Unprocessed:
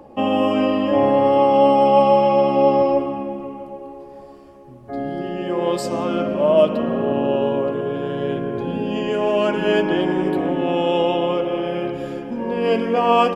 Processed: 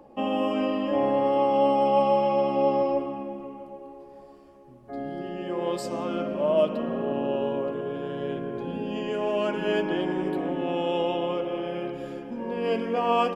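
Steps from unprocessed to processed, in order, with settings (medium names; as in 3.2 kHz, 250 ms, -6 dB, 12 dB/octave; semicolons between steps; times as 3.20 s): peaking EQ 100 Hz -12 dB 0.33 oct; trim -7.5 dB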